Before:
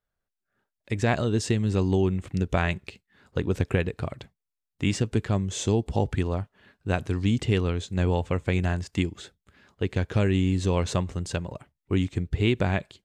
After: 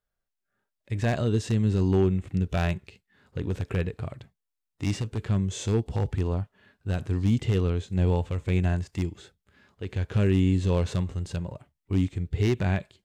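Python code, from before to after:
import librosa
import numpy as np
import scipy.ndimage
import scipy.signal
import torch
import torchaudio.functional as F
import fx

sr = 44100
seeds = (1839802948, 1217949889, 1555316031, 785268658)

y = 10.0 ** (-15.0 / 20.0) * (np.abs((x / 10.0 ** (-15.0 / 20.0) + 3.0) % 4.0 - 2.0) - 1.0)
y = fx.hpss(y, sr, part='percussive', gain_db=-11)
y = y * librosa.db_to_amplitude(2.0)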